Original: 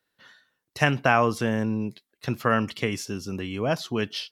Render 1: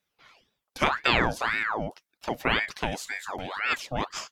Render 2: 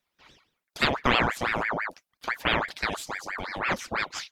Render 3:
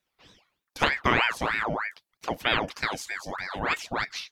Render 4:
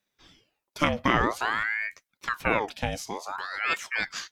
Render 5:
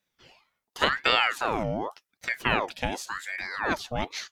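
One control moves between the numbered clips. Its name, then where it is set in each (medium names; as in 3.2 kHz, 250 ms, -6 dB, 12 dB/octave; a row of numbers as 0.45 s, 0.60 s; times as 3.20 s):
ring modulator with a swept carrier, at: 1.9 Hz, 6 Hz, 3.2 Hz, 0.52 Hz, 0.89 Hz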